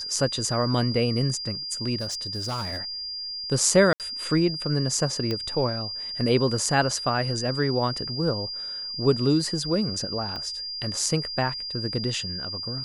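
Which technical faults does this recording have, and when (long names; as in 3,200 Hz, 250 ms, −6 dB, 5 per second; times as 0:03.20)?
whistle 4,800 Hz −31 dBFS
0:01.97–0:02.82: clipping −25.5 dBFS
0:03.93–0:04.00: drop-out 68 ms
0:05.31: click −15 dBFS
0:10.36: click −21 dBFS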